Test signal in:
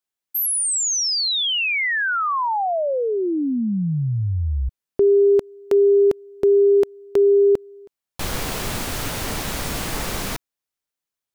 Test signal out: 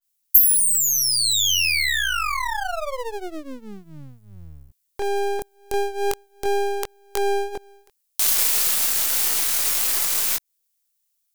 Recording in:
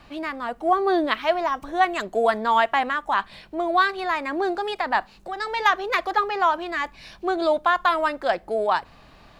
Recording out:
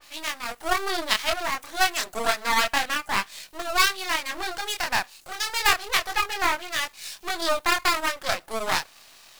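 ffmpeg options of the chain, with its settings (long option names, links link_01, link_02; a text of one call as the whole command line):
ffmpeg -i in.wav -filter_complex "[0:a]bass=frequency=250:gain=-13,treble=frequency=4000:gain=2,acrossover=split=3500[link_01][link_02];[link_02]acompressor=threshold=-30dB:ratio=6:attack=86:release=286:detection=peak[link_03];[link_01][link_03]amix=inputs=2:normalize=0,flanger=delay=19:depth=7.9:speed=0.29,aeval=exprs='max(val(0),0)':channel_layout=same,crystalizer=i=9.5:c=0,adynamicequalizer=threshold=0.0251:dfrequency=2500:dqfactor=0.7:tfrequency=2500:tqfactor=0.7:attack=5:release=100:ratio=0.375:range=2:mode=cutabove:tftype=highshelf,volume=-1.5dB" out.wav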